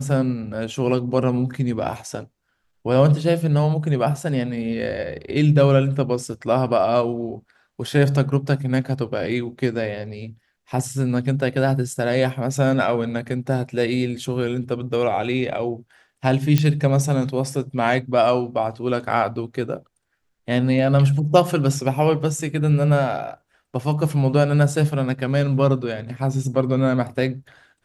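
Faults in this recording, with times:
0:16.58: click −6 dBFS

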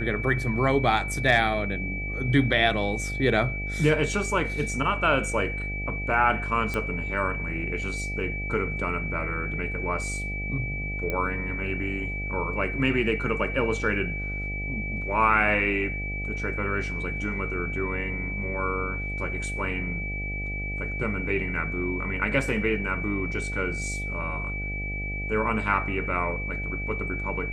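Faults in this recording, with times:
mains buzz 50 Hz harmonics 16 −33 dBFS
whistle 2,300 Hz −32 dBFS
0:06.74: click −16 dBFS
0:11.10: click −16 dBFS

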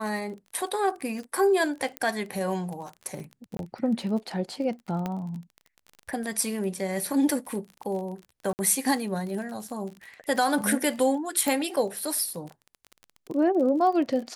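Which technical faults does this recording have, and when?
surface crackle 31 per second −34 dBFS
0:01.97: click −16 dBFS
0:03.57–0:03.59: drop-out 22 ms
0:05.06: click −17 dBFS
0:08.53–0:08.59: drop-out 59 ms
0:11.48: click

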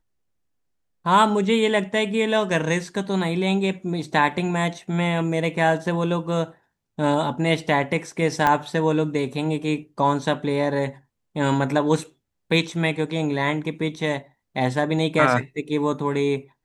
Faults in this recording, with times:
0:08.47: click −7 dBFS

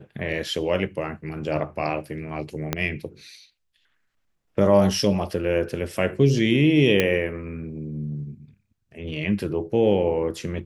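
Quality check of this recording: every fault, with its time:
0:02.73: click −8 dBFS
0:07.00: click −6 dBFS

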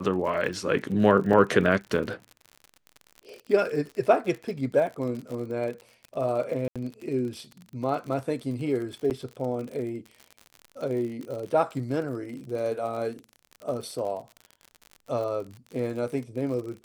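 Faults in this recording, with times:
surface crackle 52 per second −34 dBFS
0:01.33: drop-out 3.4 ms
0:06.68–0:06.76: drop-out 76 ms
0:09.10–0:09.11: drop-out 8.4 ms

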